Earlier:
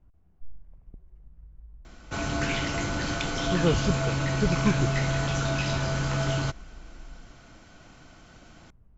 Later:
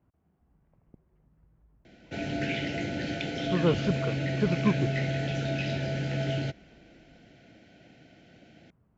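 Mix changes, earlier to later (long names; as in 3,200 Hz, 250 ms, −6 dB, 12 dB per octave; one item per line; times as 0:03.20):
background: add Butterworth band-reject 1,100 Hz, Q 1.1
master: add band-pass filter 130–3,100 Hz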